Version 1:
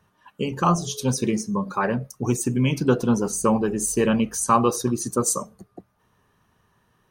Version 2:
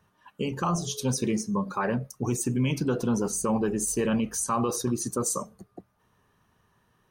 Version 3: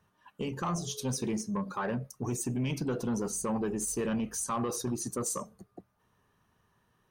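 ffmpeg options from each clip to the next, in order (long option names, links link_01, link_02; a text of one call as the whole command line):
ffmpeg -i in.wav -af "alimiter=limit=-15dB:level=0:latency=1:release=24,volume=-2.5dB" out.wav
ffmpeg -i in.wav -af "asoftclip=type=tanh:threshold=-20dB,volume=-4dB" out.wav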